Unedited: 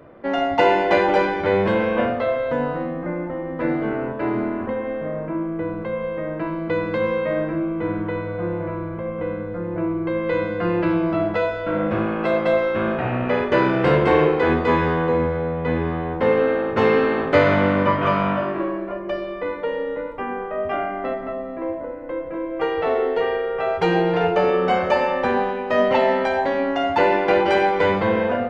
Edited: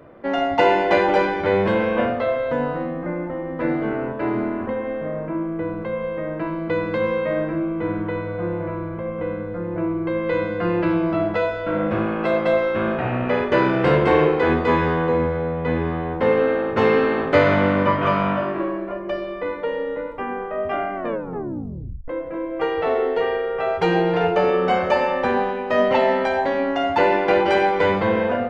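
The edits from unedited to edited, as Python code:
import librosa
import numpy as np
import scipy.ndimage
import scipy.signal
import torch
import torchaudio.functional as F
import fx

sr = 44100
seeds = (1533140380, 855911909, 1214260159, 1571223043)

y = fx.edit(x, sr, fx.tape_stop(start_s=20.95, length_s=1.13), tone=tone)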